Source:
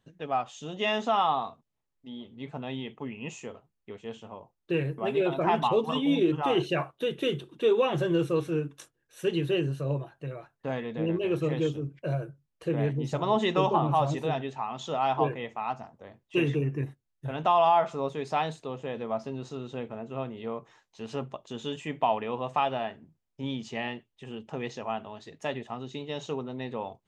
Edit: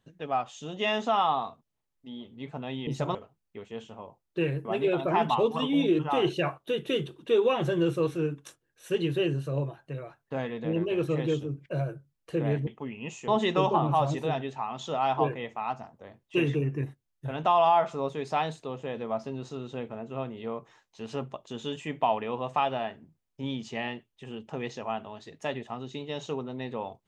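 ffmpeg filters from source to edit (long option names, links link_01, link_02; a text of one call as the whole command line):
ffmpeg -i in.wav -filter_complex "[0:a]asplit=5[link_01][link_02][link_03][link_04][link_05];[link_01]atrim=end=2.872[link_06];[link_02]atrim=start=12.998:end=13.282[link_07];[link_03]atrim=start=3.478:end=13.002[link_08];[link_04]atrim=start=2.868:end=3.482[link_09];[link_05]atrim=start=13.278[link_10];[link_06][link_07]acrossfade=duration=0.004:curve1=hsin:curve2=hsin[link_11];[link_11][link_08]acrossfade=duration=0.004:curve1=hsin:curve2=hsin[link_12];[link_12][link_09]acrossfade=duration=0.004:curve1=hsin:curve2=hsin[link_13];[link_13][link_10]acrossfade=duration=0.004:curve1=hsin:curve2=hsin" out.wav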